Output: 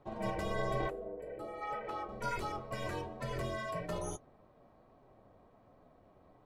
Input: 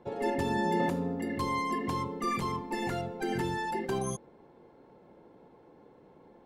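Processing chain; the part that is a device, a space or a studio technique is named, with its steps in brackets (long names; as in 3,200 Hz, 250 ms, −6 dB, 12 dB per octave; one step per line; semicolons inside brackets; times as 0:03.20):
alien voice (ring modulation 220 Hz; flanger 1.2 Hz, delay 6.7 ms, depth 4.6 ms, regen −48%)
0:00.88–0:02.09: bass and treble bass −15 dB, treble −14 dB
0:00.90–0:01.62: gain on a spectral selection 710–7,100 Hz −11 dB
level +1 dB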